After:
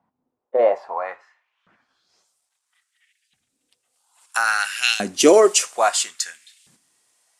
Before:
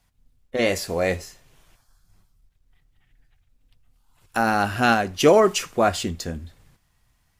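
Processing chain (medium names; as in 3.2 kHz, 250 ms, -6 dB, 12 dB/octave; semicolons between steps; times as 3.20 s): low-pass sweep 920 Hz -> 8.8 kHz, 1.54–2.33 s; treble shelf 3.1 kHz +10 dB; LFO high-pass saw up 0.6 Hz 200–3200 Hz; trim -2.5 dB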